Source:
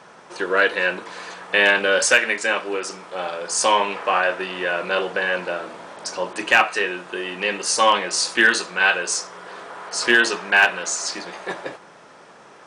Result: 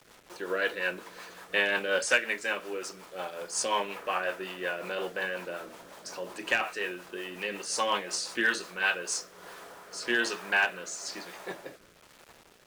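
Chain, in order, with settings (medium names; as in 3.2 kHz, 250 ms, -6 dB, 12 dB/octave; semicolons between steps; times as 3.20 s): bit crusher 7-bit; rotary cabinet horn 5.5 Hz, later 1.1 Hz, at 8.66 s; trim -8 dB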